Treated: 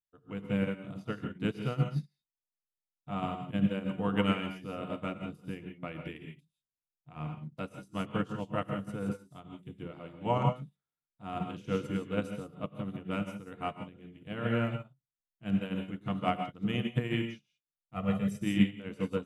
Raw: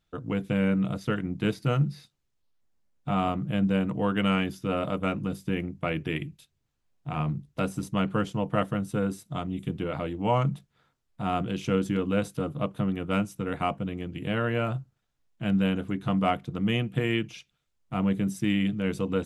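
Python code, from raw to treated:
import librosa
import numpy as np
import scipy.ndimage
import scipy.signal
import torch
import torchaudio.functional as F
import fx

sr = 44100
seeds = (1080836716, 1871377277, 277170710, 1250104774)

y = fx.comb(x, sr, ms=1.6, depth=0.86, at=(17.95, 18.36), fade=0.02)
y = fx.rev_gated(y, sr, seeds[0], gate_ms=190, shape='rising', drr_db=3.0)
y = fx.upward_expand(y, sr, threshold_db=-39.0, expansion=2.5)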